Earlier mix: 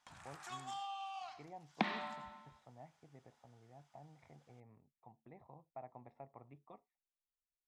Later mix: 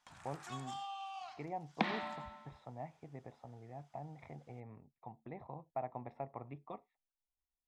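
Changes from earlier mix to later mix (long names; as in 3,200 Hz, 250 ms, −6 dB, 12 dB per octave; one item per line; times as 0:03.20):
speech +10.0 dB
second sound: send on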